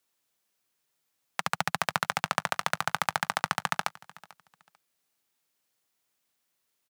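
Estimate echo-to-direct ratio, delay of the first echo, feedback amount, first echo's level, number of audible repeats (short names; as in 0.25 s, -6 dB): -21.5 dB, 0.443 s, 23%, -21.5 dB, 2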